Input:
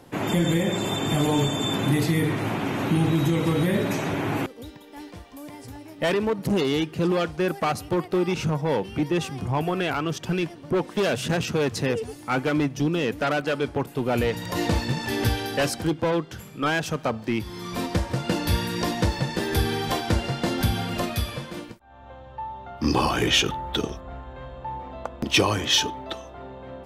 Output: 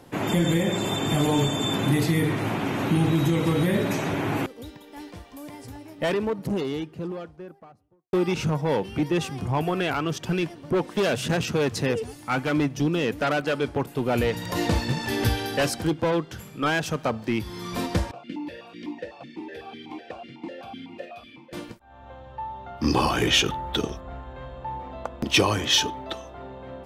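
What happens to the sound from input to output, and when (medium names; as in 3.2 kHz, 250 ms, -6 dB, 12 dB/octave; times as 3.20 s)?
5.47–8.13 s: studio fade out
12.08–12.50 s: peaking EQ 400 Hz -6 dB
18.11–21.53 s: stepped vowel filter 8 Hz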